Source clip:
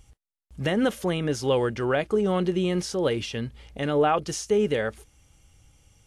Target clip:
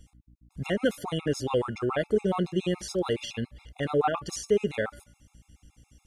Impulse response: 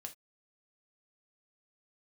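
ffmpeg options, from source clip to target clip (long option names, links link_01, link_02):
-af "aeval=exprs='val(0)+0.00224*(sin(2*PI*60*n/s)+sin(2*PI*2*60*n/s)/2+sin(2*PI*3*60*n/s)/3+sin(2*PI*4*60*n/s)/4+sin(2*PI*5*60*n/s)/5)':channel_layout=same,bandreject=frequency=288.8:width_type=h:width=4,bandreject=frequency=577.6:width_type=h:width=4,bandreject=frequency=866.4:width_type=h:width=4,bandreject=frequency=1155.2:width_type=h:width=4,bandreject=frequency=1444:width_type=h:width=4,bandreject=frequency=1732.8:width_type=h:width=4,bandreject=frequency=2021.6:width_type=h:width=4,bandreject=frequency=2310.4:width_type=h:width=4,bandreject=frequency=2599.2:width_type=h:width=4,bandreject=frequency=2888:width_type=h:width=4,bandreject=frequency=3176.8:width_type=h:width=4,afftfilt=real='re*gt(sin(2*PI*7.1*pts/sr)*(1-2*mod(floor(b*sr/1024/690),2)),0)':imag='im*gt(sin(2*PI*7.1*pts/sr)*(1-2*mod(floor(b*sr/1024/690),2)),0)':win_size=1024:overlap=0.75"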